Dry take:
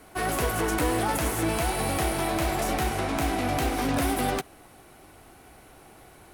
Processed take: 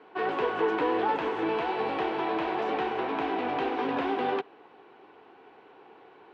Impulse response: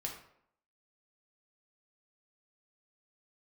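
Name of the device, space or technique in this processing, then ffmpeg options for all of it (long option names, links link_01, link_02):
phone earpiece: -af "highpass=340,equalizer=frequency=430:width_type=q:width=4:gain=8,equalizer=frequency=620:width_type=q:width=4:gain=-8,equalizer=frequency=950:width_type=q:width=4:gain=5,equalizer=frequency=1300:width_type=q:width=4:gain=-4,equalizer=frequency=2100:width_type=q:width=4:gain=-6,lowpass=frequency=3000:width=0.5412,lowpass=frequency=3000:width=1.3066"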